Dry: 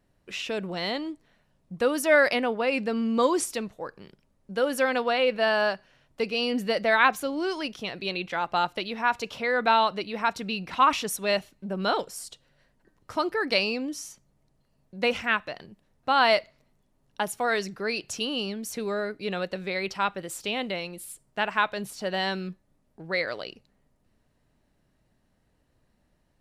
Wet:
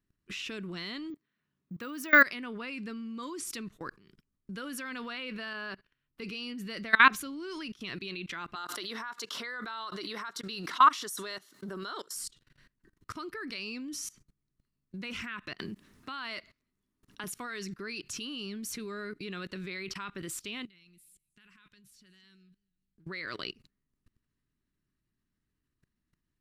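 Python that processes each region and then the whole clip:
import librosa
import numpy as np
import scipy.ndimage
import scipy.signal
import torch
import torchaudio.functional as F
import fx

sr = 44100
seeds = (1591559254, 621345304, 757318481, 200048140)

y = fx.chain(x, sr, fx.bessel_highpass(hz=150.0, order=2),
    fx.high_shelf(hz=5000.0, db=-8.0),
    fx.resample_bad(factor=2, down='filtered', up='hold'), at=(1.1, 2.22))
y = fx.chain(y, sr, fx.peak_eq(hz=7000.0, db=-11.0, octaves=0.91),
    fx.comb_fb(f0_hz=430.0, decay_s=0.34, harmonics='odd', damping=0.0, mix_pct=40), at=(5.53, 6.22))
y = fx.chain(y, sr, fx.highpass(hz=480.0, slope=12),
    fx.peak_eq(hz=2500.0, db=-14.5, octaves=0.38),
    fx.pre_swell(db_per_s=80.0), at=(8.55, 12.16))
y = fx.chain(y, sr, fx.highpass(hz=43.0, slope=6),
    fx.peak_eq(hz=140.0, db=-8.0, octaves=0.31),
    fx.band_squash(depth_pct=40), at=(15.59, 17.24))
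y = fx.chain(y, sr, fx.tone_stack(knobs='6-0-2'),
    fx.over_compress(threshold_db=-55.0, ratio=-1.0),
    fx.echo_warbled(ms=210, feedback_pct=31, rate_hz=2.8, cents=141, wet_db=-22.5), at=(20.65, 23.06))
y = fx.band_shelf(y, sr, hz=650.0, db=-14.0, octaves=1.1)
y = fx.level_steps(y, sr, step_db=22)
y = y * librosa.db_to_amplitude(5.0)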